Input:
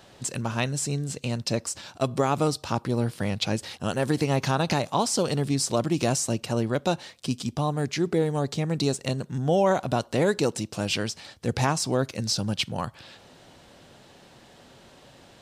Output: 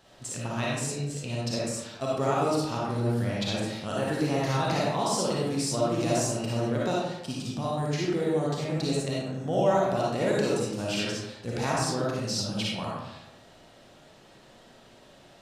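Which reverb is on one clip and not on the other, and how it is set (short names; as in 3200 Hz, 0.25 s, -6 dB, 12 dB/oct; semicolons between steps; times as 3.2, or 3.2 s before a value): digital reverb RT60 0.93 s, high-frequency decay 0.6×, pre-delay 15 ms, DRR -6 dB; gain -8.5 dB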